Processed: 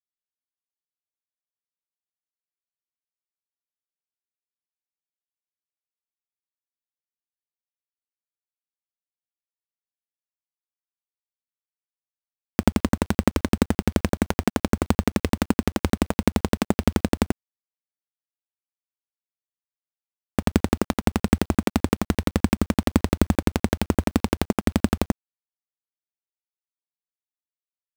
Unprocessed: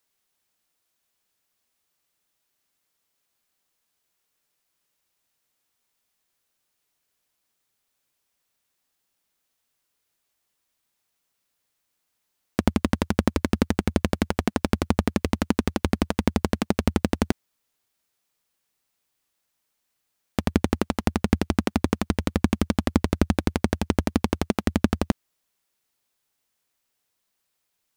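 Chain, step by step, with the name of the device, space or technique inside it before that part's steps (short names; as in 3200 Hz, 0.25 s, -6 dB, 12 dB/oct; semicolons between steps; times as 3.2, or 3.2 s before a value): early 8-bit sampler (sample-rate reducer 7900 Hz, jitter 0%; bit-crush 8-bit); gain +1.5 dB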